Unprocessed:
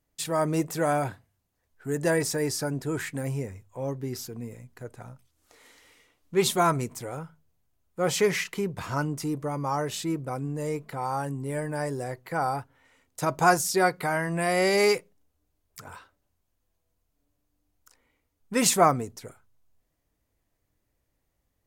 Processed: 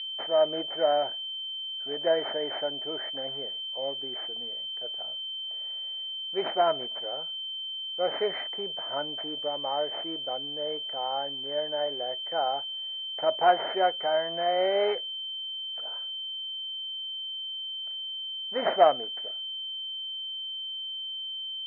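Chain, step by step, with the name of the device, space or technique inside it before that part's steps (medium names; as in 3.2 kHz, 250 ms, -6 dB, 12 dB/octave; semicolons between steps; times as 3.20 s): toy sound module (decimation joined by straight lines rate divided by 6×; class-D stage that switches slowly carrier 3.1 kHz; cabinet simulation 570–3500 Hz, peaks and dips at 630 Hz +9 dB, 1.1 kHz -10 dB, 2 kHz +5 dB, 3 kHz -3 dB)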